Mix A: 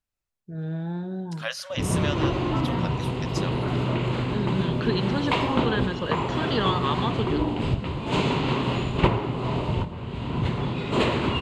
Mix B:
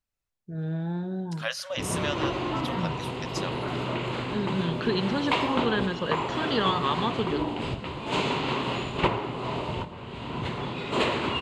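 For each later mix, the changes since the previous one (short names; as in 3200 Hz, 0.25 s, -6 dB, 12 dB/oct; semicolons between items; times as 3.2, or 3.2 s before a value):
background: add low shelf 250 Hz -11 dB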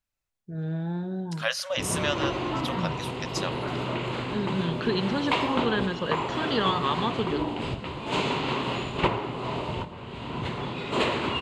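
second voice +3.5 dB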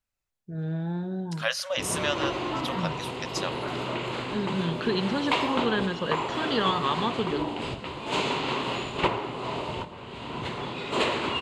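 background: add tone controls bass -5 dB, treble +3 dB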